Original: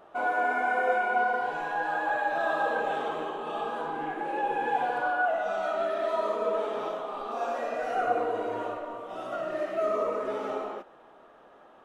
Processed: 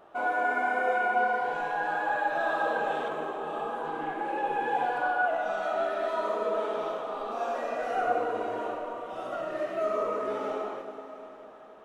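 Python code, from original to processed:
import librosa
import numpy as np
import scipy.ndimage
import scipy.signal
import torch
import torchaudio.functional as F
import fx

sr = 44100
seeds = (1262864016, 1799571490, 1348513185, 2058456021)

y = fx.peak_eq(x, sr, hz=3900.0, db=-7.0, octaves=1.4, at=(3.08, 3.85))
y = fx.rev_plate(y, sr, seeds[0], rt60_s=4.5, hf_ratio=1.0, predelay_ms=0, drr_db=7.0)
y = y * 10.0 ** (-1.0 / 20.0)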